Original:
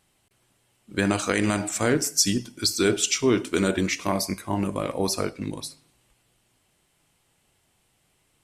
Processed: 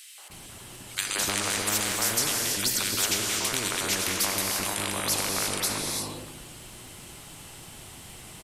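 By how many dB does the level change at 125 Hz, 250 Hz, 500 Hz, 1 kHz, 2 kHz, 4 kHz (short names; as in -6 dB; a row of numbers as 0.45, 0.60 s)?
-8.0, -11.5, -9.5, -1.0, 0.0, +2.0 dB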